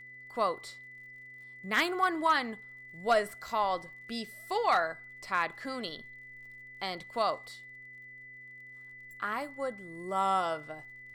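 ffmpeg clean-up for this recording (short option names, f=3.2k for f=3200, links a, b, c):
-af "adeclick=t=4,bandreject=f=125.5:t=h:w=4,bandreject=f=251:t=h:w=4,bandreject=f=376.5:t=h:w=4,bandreject=f=502:t=h:w=4,bandreject=f=2k:w=30"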